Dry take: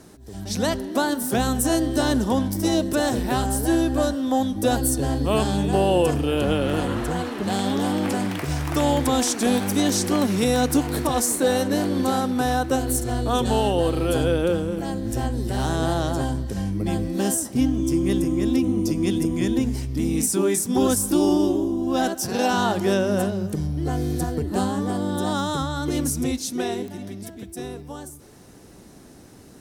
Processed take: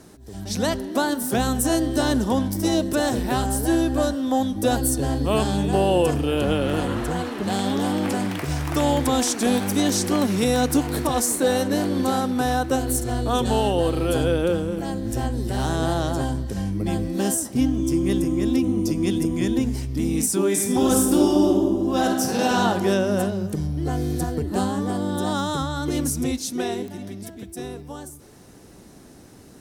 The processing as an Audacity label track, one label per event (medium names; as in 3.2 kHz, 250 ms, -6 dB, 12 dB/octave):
20.470000	22.580000	reverb throw, RT60 1.3 s, DRR 2.5 dB